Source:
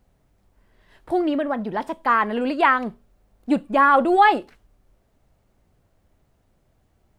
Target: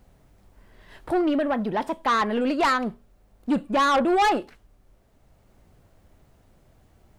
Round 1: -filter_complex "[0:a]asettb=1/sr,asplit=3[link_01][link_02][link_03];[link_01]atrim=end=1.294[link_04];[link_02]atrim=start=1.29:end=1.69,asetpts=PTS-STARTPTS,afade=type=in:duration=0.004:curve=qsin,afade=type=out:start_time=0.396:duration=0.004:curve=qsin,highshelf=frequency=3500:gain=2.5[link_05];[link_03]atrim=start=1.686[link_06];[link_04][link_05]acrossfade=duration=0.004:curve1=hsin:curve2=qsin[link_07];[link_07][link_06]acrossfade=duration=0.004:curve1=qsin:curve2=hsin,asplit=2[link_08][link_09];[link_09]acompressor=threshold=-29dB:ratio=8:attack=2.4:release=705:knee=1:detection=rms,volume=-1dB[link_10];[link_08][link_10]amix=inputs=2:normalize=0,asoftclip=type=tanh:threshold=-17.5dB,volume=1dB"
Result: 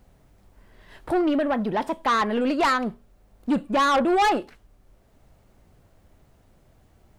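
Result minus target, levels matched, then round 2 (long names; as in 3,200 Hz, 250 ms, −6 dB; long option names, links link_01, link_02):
downward compressor: peak gain reduction −7.5 dB
-filter_complex "[0:a]asettb=1/sr,asplit=3[link_01][link_02][link_03];[link_01]atrim=end=1.294[link_04];[link_02]atrim=start=1.29:end=1.69,asetpts=PTS-STARTPTS,afade=type=in:duration=0.004:curve=qsin,afade=type=out:start_time=0.396:duration=0.004:curve=qsin,highshelf=frequency=3500:gain=2.5[link_05];[link_03]atrim=start=1.686[link_06];[link_04][link_05]acrossfade=duration=0.004:curve1=hsin:curve2=qsin[link_07];[link_07][link_06]acrossfade=duration=0.004:curve1=qsin:curve2=hsin,asplit=2[link_08][link_09];[link_09]acompressor=threshold=-37.5dB:ratio=8:attack=2.4:release=705:knee=1:detection=rms,volume=-1dB[link_10];[link_08][link_10]amix=inputs=2:normalize=0,asoftclip=type=tanh:threshold=-17.5dB,volume=1dB"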